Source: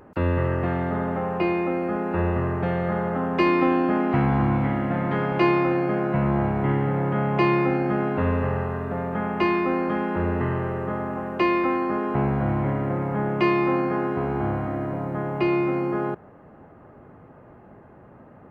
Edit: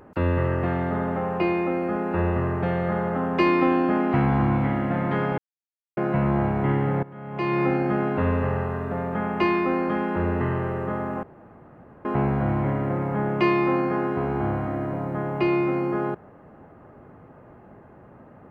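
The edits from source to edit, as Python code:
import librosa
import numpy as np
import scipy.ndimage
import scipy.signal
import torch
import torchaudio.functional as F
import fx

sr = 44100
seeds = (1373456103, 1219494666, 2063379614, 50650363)

y = fx.edit(x, sr, fx.silence(start_s=5.38, length_s=0.59),
    fx.fade_in_from(start_s=7.03, length_s=0.62, curve='qua', floor_db=-19.5),
    fx.room_tone_fill(start_s=11.23, length_s=0.82), tone=tone)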